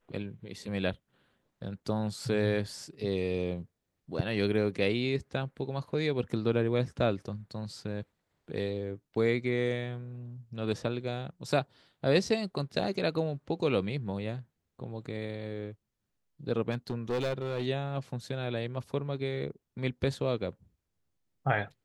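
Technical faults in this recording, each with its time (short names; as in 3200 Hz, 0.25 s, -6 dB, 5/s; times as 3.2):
16.72–17.67 clipped -27 dBFS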